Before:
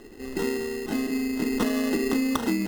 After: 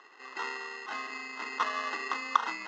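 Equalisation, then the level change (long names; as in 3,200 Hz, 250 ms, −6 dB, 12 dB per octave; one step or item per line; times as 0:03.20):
high-pass with resonance 1,100 Hz, resonance Q 3.5
elliptic low-pass filter 6,900 Hz, stop band 60 dB
high-frequency loss of the air 100 metres
−1.5 dB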